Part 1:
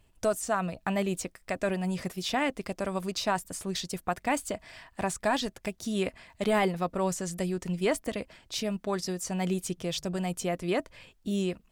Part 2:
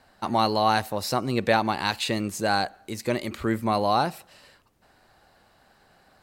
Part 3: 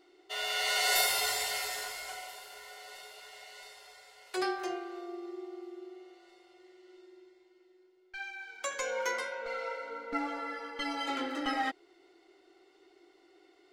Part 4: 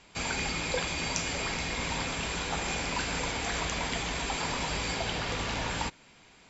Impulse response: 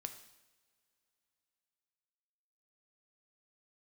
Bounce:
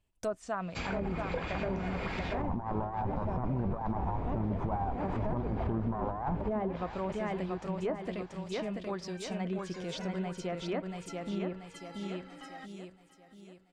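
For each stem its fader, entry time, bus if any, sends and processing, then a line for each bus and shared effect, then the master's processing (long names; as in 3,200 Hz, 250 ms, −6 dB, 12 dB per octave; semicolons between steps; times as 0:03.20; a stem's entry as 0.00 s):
−7.5 dB, 0.00 s, no send, echo send −4 dB, noise gate −54 dBFS, range −8 dB
+2.0 dB, 2.25 s, send −5.5 dB, echo send −23 dB, lower of the sound and its delayed copy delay 0.33 ms; drawn EQ curve 100 Hz 0 dB, 510 Hz −15 dB, 970 Hz +4 dB, 2,600 Hz −16 dB; background raised ahead of every attack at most 100 dB per second
−17.0 dB, 0.95 s, no send, echo send −17.5 dB, no processing
−4.5 dB, 0.60 s, no send, echo send −15 dB, low-shelf EQ 220 Hz +4 dB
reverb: on, pre-delay 3 ms
echo: repeating echo 684 ms, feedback 44%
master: compressor whose output falls as the input rises −26 dBFS, ratio −0.5; treble cut that deepens with the level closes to 650 Hz, closed at −25.5 dBFS; brickwall limiter −24 dBFS, peak gain reduction 7 dB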